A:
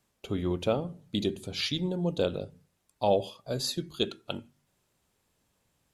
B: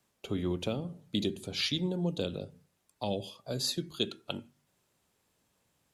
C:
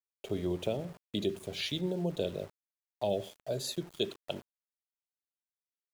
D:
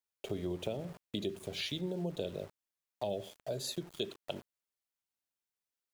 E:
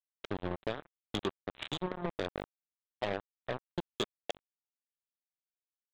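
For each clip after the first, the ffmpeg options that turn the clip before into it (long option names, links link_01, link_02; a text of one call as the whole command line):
ffmpeg -i in.wav -filter_complex "[0:a]lowshelf=frequency=61:gain=-10.5,acrossover=split=310|2500[link_01][link_02][link_03];[link_02]acompressor=threshold=-36dB:ratio=6[link_04];[link_01][link_04][link_03]amix=inputs=3:normalize=0" out.wav
ffmpeg -i in.wav -af "equalizer=frequency=250:width_type=o:width=0.33:gain=-5,equalizer=frequency=400:width_type=o:width=0.33:gain=6,equalizer=frequency=630:width_type=o:width=0.33:gain=10,equalizer=frequency=1250:width_type=o:width=0.33:gain=-9,equalizer=frequency=5000:width_type=o:width=0.33:gain=-8,aeval=exprs='val(0)*gte(abs(val(0)),0.00531)':channel_layout=same,volume=-2.5dB" out.wav
ffmpeg -i in.wav -af "acompressor=threshold=-40dB:ratio=2,volume=2dB" out.wav
ffmpeg -i in.wav -af "aresample=8000,acrusher=bits=4:mix=0:aa=0.5,aresample=44100,asoftclip=type=tanh:threshold=-30.5dB,volume=7dB" out.wav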